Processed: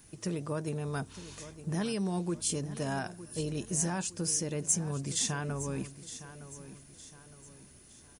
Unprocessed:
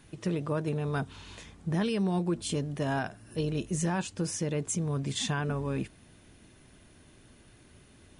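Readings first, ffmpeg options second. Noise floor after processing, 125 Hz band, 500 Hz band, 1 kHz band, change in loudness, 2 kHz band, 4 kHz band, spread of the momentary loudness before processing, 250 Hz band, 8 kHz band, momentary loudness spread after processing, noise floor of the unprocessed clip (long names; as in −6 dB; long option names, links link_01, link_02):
−56 dBFS, −4.0 dB, −4.0 dB, −4.0 dB, −1.5 dB, −4.0 dB, −1.0 dB, 7 LU, −4.0 dB, +6.5 dB, 20 LU, −58 dBFS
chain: -af "aexciter=amount=2.7:drive=7.3:freq=4900,aecho=1:1:912|1824|2736|3648:0.2|0.0818|0.0335|0.0138,volume=-4dB"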